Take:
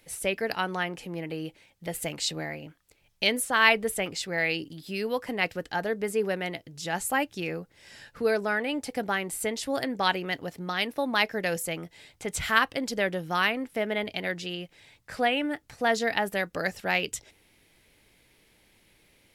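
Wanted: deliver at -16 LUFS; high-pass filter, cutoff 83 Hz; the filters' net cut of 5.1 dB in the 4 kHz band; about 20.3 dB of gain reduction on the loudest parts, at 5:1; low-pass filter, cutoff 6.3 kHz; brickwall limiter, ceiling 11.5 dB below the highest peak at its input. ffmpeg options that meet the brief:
-af "highpass=83,lowpass=6300,equalizer=f=4000:t=o:g=-7,acompressor=threshold=0.01:ratio=5,volume=29.9,alimiter=limit=0.531:level=0:latency=1"

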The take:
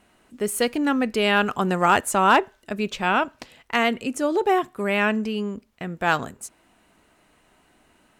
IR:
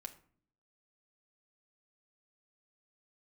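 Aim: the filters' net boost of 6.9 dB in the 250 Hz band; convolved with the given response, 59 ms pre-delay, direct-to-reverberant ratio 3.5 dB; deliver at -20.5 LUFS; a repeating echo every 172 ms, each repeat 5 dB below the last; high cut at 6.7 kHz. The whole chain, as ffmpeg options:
-filter_complex "[0:a]lowpass=6700,equalizer=f=250:t=o:g=8.5,aecho=1:1:172|344|516|688|860|1032|1204:0.562|0.315|0.176|0.0988|0.0553|0.031|0.0173,asplit=2[s0][s1];[1:a]atrim=start_sample=2205,adelay=59[s2];[s1][s2]afir=irnorm=-1:irlink=0,volume=1.12[s3];[s0][s3]amix=inputs=2:normalize=0,volume=0.631"

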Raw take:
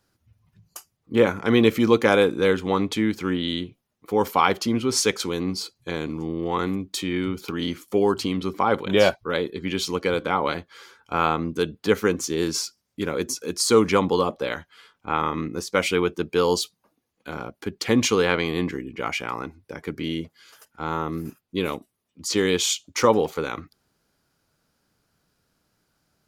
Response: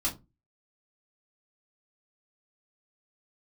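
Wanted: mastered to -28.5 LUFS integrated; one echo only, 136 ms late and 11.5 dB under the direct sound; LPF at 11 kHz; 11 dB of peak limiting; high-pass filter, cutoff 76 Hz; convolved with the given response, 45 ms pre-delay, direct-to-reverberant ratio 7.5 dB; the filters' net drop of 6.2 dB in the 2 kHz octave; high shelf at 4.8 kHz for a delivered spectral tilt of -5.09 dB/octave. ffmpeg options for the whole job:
-filter_complex "[0:a]highpass=76,lowpass=11000,equalizer=f=2000:t=o:g=-7,highshelf=f=4800:g=-8,alimiter=limit=0.168:level=0:latency=1,aecho=1:1:136:0.266,asplit=2[s0][s1];[1:a]atrim=start_sample=2205,adelay=45[s2];[s1][s2]afir=irnorm=-1:irlink=0,volume=0.224[s3];[s0][s3]amix=inputs=2:normalize=0,volume=0.841"

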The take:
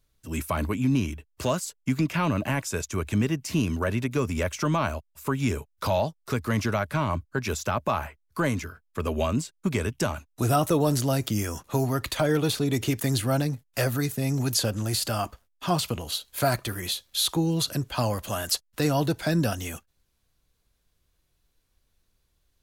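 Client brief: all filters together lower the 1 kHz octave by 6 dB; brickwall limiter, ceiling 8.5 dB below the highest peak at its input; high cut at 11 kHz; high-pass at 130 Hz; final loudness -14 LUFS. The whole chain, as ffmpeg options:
-af "highpass=130,lowpass=11000,equalizer=f=1000:t=o:g=-8.5,volume=7.94,alimiter=limit=0.708:level=0:latency=1"

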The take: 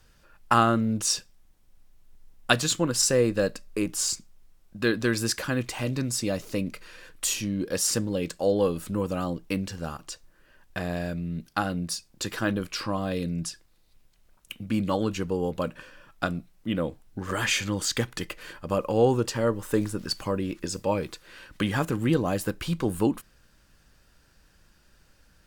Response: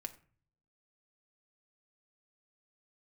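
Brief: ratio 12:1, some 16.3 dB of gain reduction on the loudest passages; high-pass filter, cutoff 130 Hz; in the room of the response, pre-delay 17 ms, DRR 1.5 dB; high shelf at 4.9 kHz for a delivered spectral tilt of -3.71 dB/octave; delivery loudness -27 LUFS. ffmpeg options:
-filter_complex "[0:a]highpass=130,highshelf=f=4900:g=4.5,acompressor=threshold=0.0282:ratio=12,asplit=2[s0][s1];[1:a]atrim=start_sample=2205,adelay=17[s2];[s1][s2]afir=irnorm=-1:irlink=0,volume=1.19[s3];[s0][s3]amix=inputs=2:normalize=0,volume=2.24"

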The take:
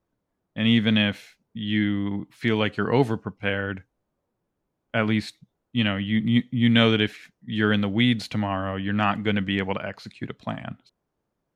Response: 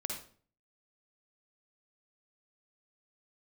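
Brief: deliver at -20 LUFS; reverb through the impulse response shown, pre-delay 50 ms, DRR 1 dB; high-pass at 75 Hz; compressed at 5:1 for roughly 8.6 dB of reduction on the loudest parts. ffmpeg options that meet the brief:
-filter_complex "[0:a]highpass=75,acompressor=threshold=0.0631:ratio=5,asplit=2[s0][s1];[1:a]atrim=start_sample=2205,adelay=50[s2];[s1][s2]afir=irnorm=-1:irlink=0,volume=0.794[s3];[s0][s3]amix=inputs=2:normalize=0,volume=2.11"

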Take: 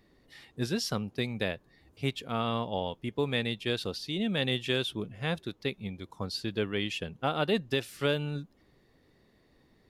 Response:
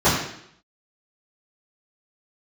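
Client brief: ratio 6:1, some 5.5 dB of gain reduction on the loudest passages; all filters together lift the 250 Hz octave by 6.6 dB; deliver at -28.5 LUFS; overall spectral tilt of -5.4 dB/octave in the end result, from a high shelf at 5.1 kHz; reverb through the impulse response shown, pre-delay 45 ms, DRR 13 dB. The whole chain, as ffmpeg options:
-filter_complex "[0:a]equalizer=f=250:t=o:g=8,highshelf=f=5100:g=-8.5,acompressor=threshold=0.0501:ratio=6,asplit=2[s0][s1];[1:a]atrim=start_sample=2205,adelay=45[s2];[s1][s2]afir=irnorm=-1:irlink=0,volume=0.0178[s3];[s0][s3]amix=inputs=2:normalize=0,volume=1.58"

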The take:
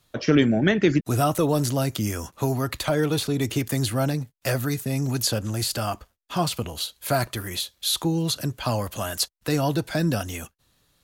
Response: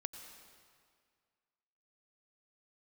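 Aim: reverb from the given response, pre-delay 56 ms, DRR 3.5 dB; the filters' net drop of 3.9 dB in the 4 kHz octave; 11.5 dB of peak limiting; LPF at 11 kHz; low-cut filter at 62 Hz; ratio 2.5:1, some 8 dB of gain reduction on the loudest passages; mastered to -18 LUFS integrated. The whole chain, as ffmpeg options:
-filter_complex "[0:a]highpass=62,lowpass=11000,equalizer=f=4000:t=o:g=-4.5,acompressor=threshold=0.0501:ratio=2.5,alimiter=level_in=1.06:limit=0.0631:level=0:latency=1,volume=0.944,asplit=2[s0][s1];[1:a]atrim=start_sample=2205,adelay=56[s2];[s1][s2]afir=irnorm=-1:irlink=0,volume=0.841[s3];[s0][s3]amix=inputs=2:normalize=0,volume=5.31"

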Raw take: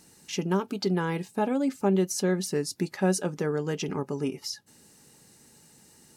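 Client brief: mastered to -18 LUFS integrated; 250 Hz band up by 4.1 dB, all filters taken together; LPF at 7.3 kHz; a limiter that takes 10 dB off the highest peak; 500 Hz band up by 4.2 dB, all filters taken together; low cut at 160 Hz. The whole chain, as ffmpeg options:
-af "highpass=160,lowpass=7300,equalizer=f=250:t=o:g=6.5,equalizer=f=500:t=o:g=3,volume=3.35,alimiter=limit=0.422:level=0:latency=1"

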